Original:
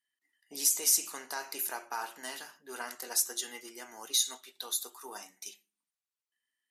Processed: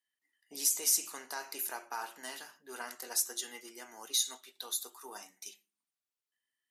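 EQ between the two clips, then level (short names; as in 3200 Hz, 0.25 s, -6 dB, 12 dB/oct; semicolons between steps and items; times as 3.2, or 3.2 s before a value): HPF 100 Hz; -2.5 dB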